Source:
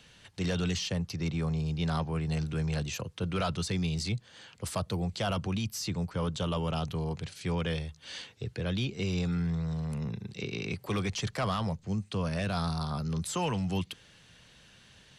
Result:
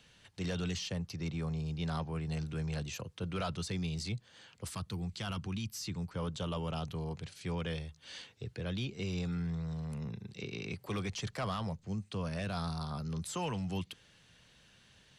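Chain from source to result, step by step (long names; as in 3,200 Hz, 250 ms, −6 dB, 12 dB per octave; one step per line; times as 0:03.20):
0:04.69–0:06.10: parametric band 590 Hz −14.5 dB → −7 dB 0.8 octaves
level −5.5 dB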